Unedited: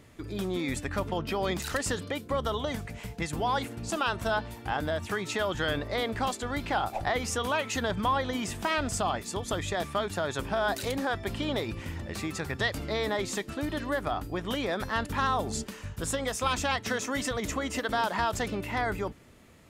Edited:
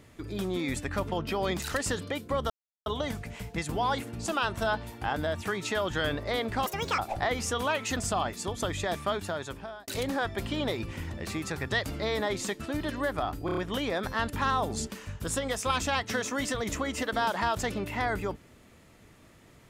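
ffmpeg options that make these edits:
-filter_complex "[0:a]asplit=10[s0][s1][s2][s3][s4][s5][s6][s7][s8][s9];[s0]atrim=end=2.5,asetpts=PTS-STARTPTS,afade=t=out:st=2.496:d=0.004:c=hsin,apad=pad_dur=0.36[s10];[s1]atrim=start=2.5:end=6.304,asetpts=PTS-STARTPTS,afade=t=in:d=0.004:c=hsin[s11];[s2]atrim=start=6.3:end=6.83,asetpts=PTS-STARTPTS,asetrate=71883,aresample=44100,atrim=end_sample=14339,asetpts=PTS-STARTPTS[s12];[s3]atrim=start=6.826:end=7.812[s13];[s4]atrim=start=8.848:end=10.76,asetpts=PTS-STARTPTS,afade=t=out:st=1.162:d=0.75[s14];[s5]atrim=start=10.76:end=14.372,asetpts=PTS-STARTPTS,afade=t=in:d=0.004:c=hsin[s15];[s6]atrim=start=14.338:end=14.372[s16];[s7]atrim=start=14.338:end=14.372[s17];[s8]atrim=start=14.338:end=14.372[s18];[s9]atrim=start=14.338[s19];[s10][s11]concat=n=2:v=0:a=1[s20];[s20][s12]acrossfade=d=0.004:c1=hsin:c2=hsin[s21];[s21][s13]acrossfade=d=0.004:c1=hsin:c2=hsin[s22];[s14][s15]concat=n=2:v=0:a=1[s23];[s22][s23]acrossfade=d=0.004:c1=hsin:c2=hsin[s24];[s24][s16]acrossfade=d=0.004:c1=hsin:c2=hsin[s25];[s25][s17]acrossfade=d=0.004:c1=hsin:c2=hsin[s26];[s26][s18]acrossfade=d=0.004:c1=hsin:c2=hsin[s27];[s27][s19]acrossfade=d=0.004:c1=hsin:c2=hsin"

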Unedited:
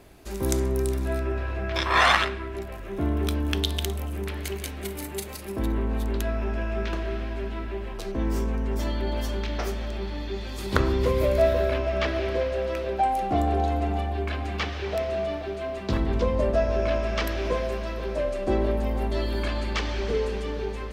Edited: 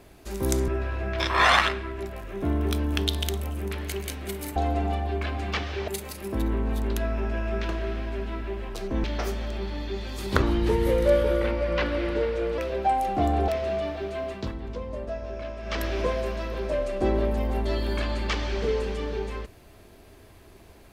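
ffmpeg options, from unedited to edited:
-filter_complex "[0:a]asplit=10[s0][s1][s2][s3][s4][s5][s6][s7][s8][s9];[s0]atrim=end=0.682[s10];[s1]atrim=start=1.238:end=5.122[s11];[s2]atrim=start=13.618:end=14.942[s12];[s3]atrim=start=5.118:end=8.282[s13];[s4]atrim=start=9.438:end=10.824[s14];[s5]atrim=start=10.82:end=12.72,asetpts=PTS-STARTPTS,asetrate=38808,aresample=44100[s15];[s6]atrim=start=12.716:end=13.622[s16];[s7]atrim=start=14.938:end=15.98,asetpts=PTS-STARTPTS,afade=t=out:st=0.822:d=0.22:silence=0.298538[s17];[s8]atrim=start=15.98:end=17.08,asetpts=PTS-STARTPTS,volume=0.299[s18];[s9]atrim=start=17.08,asetpts=PTS-STARTPTS,afade=t=in:d=0.22:silence=0.298538[s19];[s10][s11]acrossfade=d=0.004:c1=hsin:c2=hsin[s20];[s20][s12]acrossfade=d=0.004:c1=hsin:c2=hsin[s21];[s21][s13]acrossfade=d=0.004:c1=hsin:c2=hsin[s22];[s22][s14]acrossfade=d=0.004:c1=hsin:c2=hsin[s23];[s23][s15]acrossfade=d=0.004:c1=hsin:c2=hsin[s24];[s24][s16]acrossfade=d=0.004:c1=hsin:c2=hsin[s25];[s17][s18][s19]concat=n=3:v=0:a=1[s26];[s25][s26]acrossfade=d=0.004:c1=hsin:c2=hsin"

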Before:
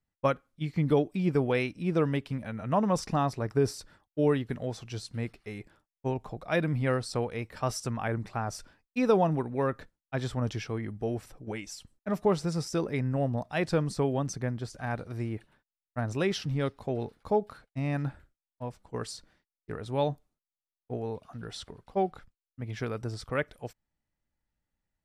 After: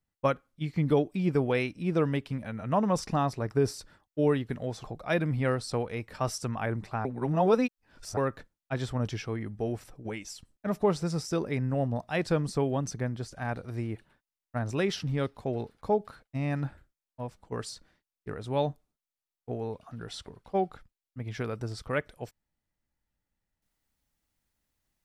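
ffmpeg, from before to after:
-filter_complex "[0:a]asplit=4[s0][s1][s2][s3];[s0]atrim=end=4.842[s4];[s1]atrim=start=6.258:end=8.472[s5];[s2]atrim=start=8.468:end=9.592,asetpts=PTS-STARTPTS,areverse[s6];[s3]atrim=start=9.588[s7];[s4][s5]acrossfade=d=0.004:c1=hsin:c2=hsin[s8];[s8][s6]acrossfade=d=0.004:c1=hsin:c2=hsin[s9];[s9][s7]acrossfade=d=0.004:c1=hsin:c2=hsin"

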